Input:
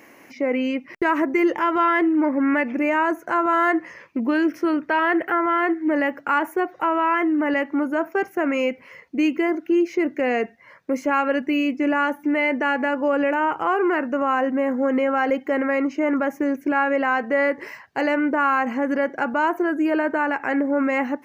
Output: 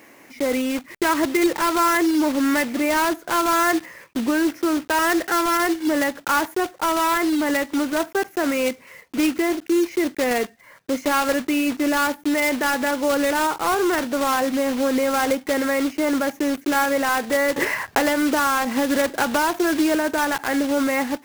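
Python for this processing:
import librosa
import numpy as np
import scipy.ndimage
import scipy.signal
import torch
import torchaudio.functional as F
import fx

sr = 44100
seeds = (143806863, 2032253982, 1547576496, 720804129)

y = fx.block_float(x, sr, bits=3)
y = fx.band_squash(y, sr, depth_pct=100, at=(17.56, 19.95))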